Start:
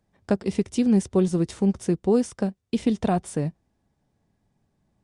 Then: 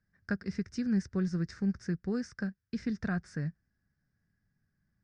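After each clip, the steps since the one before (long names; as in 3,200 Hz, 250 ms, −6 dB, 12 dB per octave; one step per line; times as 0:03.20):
drawn EQ curve 170 Hz 0 dB, 330 Hz −9 dB, 930 Hz −14 dB, 1,600 Hz +11 dB, 3,200 Hz −17 dB, 5,100 Hz +3 dB, 11,000 Hz −29 dB
level −6.5 dB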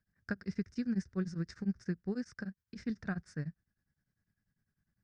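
tremolo along a rectified sine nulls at 10 Hz
level −1.5 dB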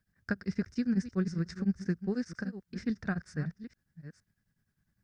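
delay that plays each chunk backwards 467 ms, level −13 dB
level +4.5 dB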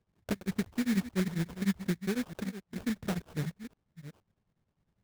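sample-rate reduction 2,000 Hz, jitter 20%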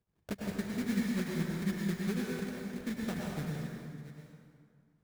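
dense smooth reverb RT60 2.1 s, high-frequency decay 0.65×, pre-delay 90 ms, DRR −3 dB
level −5.5 dB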